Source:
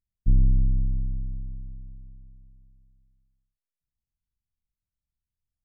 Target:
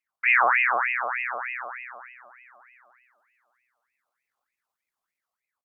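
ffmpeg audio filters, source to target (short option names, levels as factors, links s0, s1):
-filter_complex "[0:a]highpass=f=59:w=0.5412,highpass=f=59:w=1.3066,bandreject=f=78.94:t=h:w=4,bandreject=f=157.88:t=h:w=4,asetrate=83250,aresample=44100,atempo=0.529732,acrossover=split=120|180[s0][s1][s2];[s2]dynaudnorm=f=100:g=9:m=1.78[s3];[s0][s1][s3]amix=inputs=3:normalize=0,aphaser=in_gain=1:out_gain=1:delay=1.3:decay=0.24:speed=0.69:type=sinusoidal,asplit=2[s4][s5];[s5]aecho=0:1:602|1204|1806:0.106|0.0434|0.0178[s6];[s4][s6]amix=inputs=2:normalize=0,aeval=exprs='val(0)*sin(2*PI*1600*n/s+1600*0.45/3.3*sin(2*PI*3.3*n/s))':c=same,volume=2.24"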